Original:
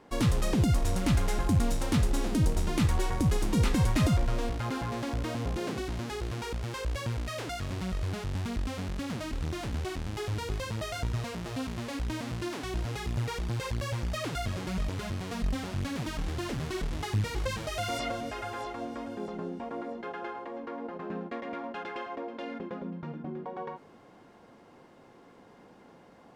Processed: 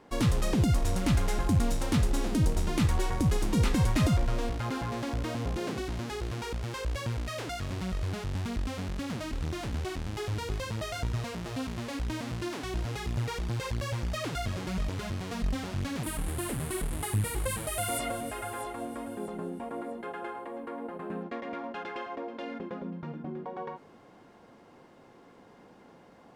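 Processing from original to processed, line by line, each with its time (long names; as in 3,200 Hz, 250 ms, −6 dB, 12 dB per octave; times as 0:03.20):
0:16.03–0:21.23: high shelf with overshoot 7,500 Hz +10.5 dB, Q 3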